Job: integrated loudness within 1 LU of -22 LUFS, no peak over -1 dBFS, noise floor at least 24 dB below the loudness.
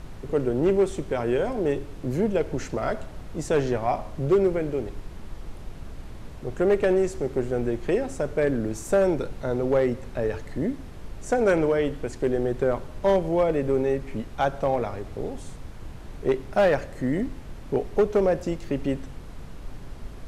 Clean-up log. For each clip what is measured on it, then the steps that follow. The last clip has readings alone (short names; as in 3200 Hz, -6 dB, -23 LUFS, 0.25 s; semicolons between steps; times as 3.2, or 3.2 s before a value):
clipped 0.6%; flat tops at -14.0 dBFS; noise floor -40 dBFS; noise floor target -50 dBFS; loudness -25.5 LUFS; peak -14.0 dBFS; loudness target -22.0 LUFS
-> clip repair -14 dBFS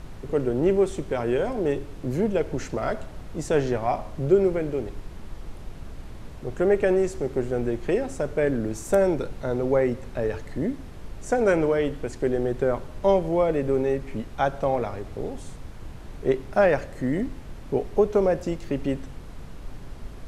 clipped 0.0%; noise floor -40 dBFS; noise floor target -50 dBFS
-> noise print and reduce 10 dB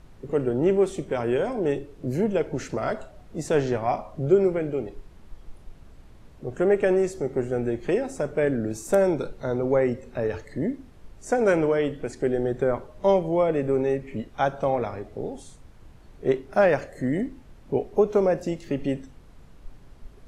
noise floor -50 dBFS; loudness -25.5 LUFS; peak -7.0 dBFS; loudness target -22.0 LUFS
-> gain +3.5 dB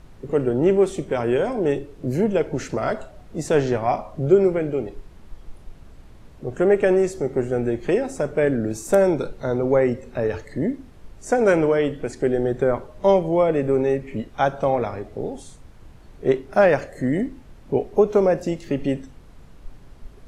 loudness -22.0 LUFS; peak -3.5 dBFS; noise floor -46 dBFS